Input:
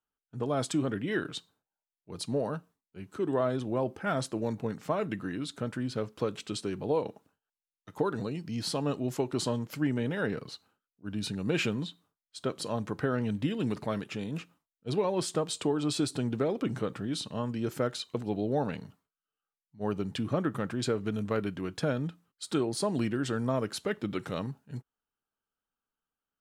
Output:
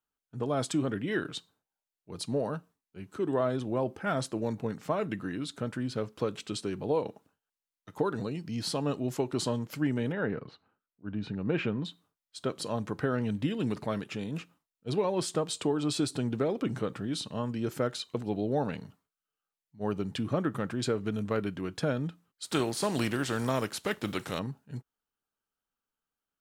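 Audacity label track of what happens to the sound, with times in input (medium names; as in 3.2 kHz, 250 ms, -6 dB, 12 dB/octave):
10.120000	11.850000	low-pass 2.1 kHz
22.440000	24.380000	spectral contrast reduction exponent 0.68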